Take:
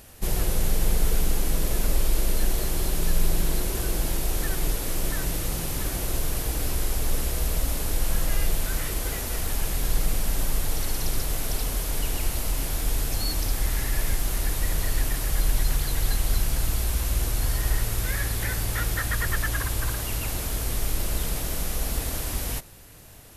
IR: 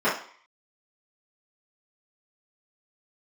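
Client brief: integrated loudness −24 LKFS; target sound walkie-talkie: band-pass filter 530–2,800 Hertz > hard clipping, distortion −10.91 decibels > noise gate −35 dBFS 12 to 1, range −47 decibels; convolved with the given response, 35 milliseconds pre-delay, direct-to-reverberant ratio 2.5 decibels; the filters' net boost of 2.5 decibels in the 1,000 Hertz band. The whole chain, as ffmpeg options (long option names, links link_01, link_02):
-filter_complex "[0:a]equalizer=frequency=1000:width_type=o:gain=4,asplit=2[link_01][link_02];[1:a]atrim=start_sample=2205,adelay=35[link_03];[link_02][link_03]afir=irnorm=-1:irlink=0,volume=-19.5dB[link_04];[link_01][link_04]amix=inputs=2:normalize=0,highpass=530,lowpass=2800,asoftclip=type=hard:threshold=-32.5dB,agate=range=-47dB:threshold=-35dB:ratio=12,volume=14.5dB"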